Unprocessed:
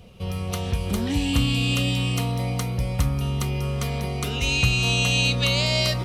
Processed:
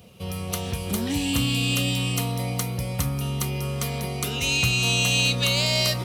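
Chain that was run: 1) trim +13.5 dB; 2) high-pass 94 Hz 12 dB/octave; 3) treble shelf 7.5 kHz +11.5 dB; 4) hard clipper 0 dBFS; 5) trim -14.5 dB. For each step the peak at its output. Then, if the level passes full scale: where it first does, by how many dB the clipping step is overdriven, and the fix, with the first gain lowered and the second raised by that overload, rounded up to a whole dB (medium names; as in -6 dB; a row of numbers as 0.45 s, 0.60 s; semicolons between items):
+6.0 dBFS, +4.5 dBFS, +6.0 dBFS, 0.0 dBFS, -14.5 dBFS; step 1, 6.0 dB; step 1 +7.5 dB, step 5 -8.5 dB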